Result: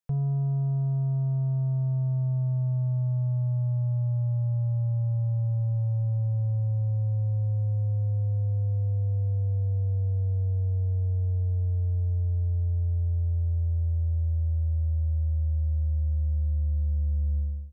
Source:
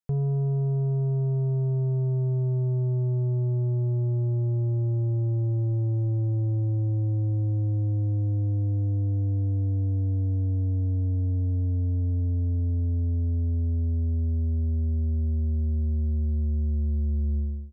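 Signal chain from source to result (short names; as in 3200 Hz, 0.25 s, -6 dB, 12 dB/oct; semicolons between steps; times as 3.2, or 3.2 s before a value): elliptic band-stop 190–470 Hz, stop band 40 dB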